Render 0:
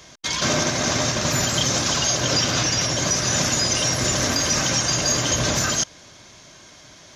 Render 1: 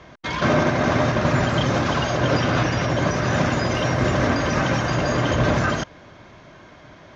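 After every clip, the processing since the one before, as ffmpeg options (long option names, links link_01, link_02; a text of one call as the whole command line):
ffmpeg -i in.wav -af "lowpass=1800,volume=5dB" out.wav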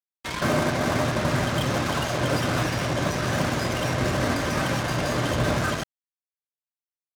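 ffmpeg -i in.wav -af "acrusher=bits=3:mix=0:aa=0.5,volume=-4.5dB" out.wav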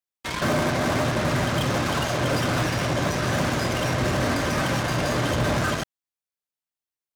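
ffmpeg -i in.wav -af "asoftclip=type=hard:threshold=-19.5dB,volume=1.5dB" out.wav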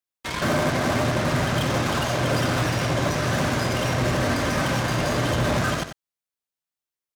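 ffmpeg -i in.wav -af "aecho=1:1:91:0.355" out.wav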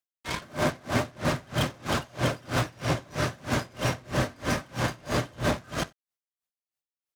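ffmpeg -i in.wav -af "aeval=exprs='val(0)*pow(10,-30*(0.5-0.5*cos(2*PI*3.1*n/s))/20)':channel_layout=same" out.wav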